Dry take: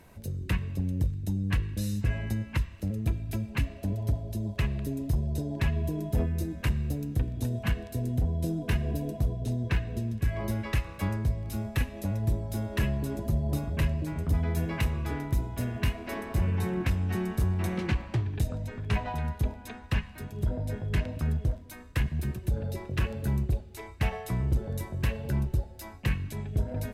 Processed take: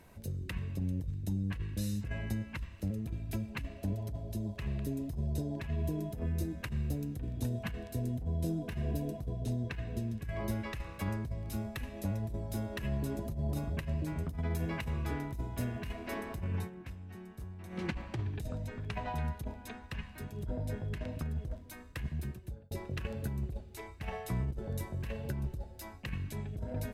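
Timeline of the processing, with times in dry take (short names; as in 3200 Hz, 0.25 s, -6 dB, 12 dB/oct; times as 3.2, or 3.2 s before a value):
16.53–17.86 dip -14.5 dB, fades 0.17 s
21.98–22.71 fade out
whole clip: bell 110 Hz -2.5 dB 0.23 oct; negative-ratio compressor -28 dBFS, ratio -0.5; gain -5 dB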